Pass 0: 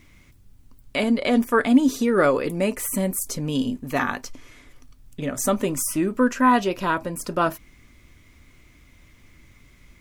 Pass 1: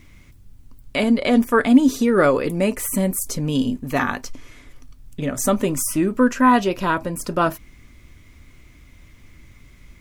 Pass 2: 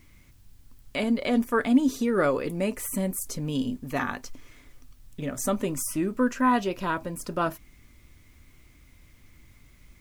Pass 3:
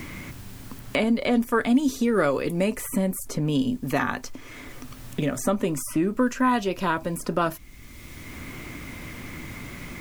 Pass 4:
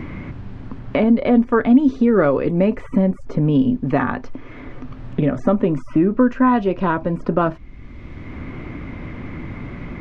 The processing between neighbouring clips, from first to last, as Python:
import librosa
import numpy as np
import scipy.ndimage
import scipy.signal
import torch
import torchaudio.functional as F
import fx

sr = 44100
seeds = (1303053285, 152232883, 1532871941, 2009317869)

y1 = fx.low_shelf(x, sr, hz=170.0, db=4.5)
y1 = F.gain(torch.from_numpy(y1), 2.0).numpy()
y2 = fx.quant_dither(y1, sr, seeds[0], bits=10, dither='triangular')
y2 = F.gain(torch.from_numpy(y2), -7.5).numpy()
y3 = fx.band_squash(y2, sr, depth_pct=70)
y3 = F.gain(torch.from_numpy(y3), 3.0).numpy()
y4 = fx.spacing_loss(y3, sr, db_at_10k=45)
y4 = F.gain(torch.from_numpy(y4), 9.0).numpy()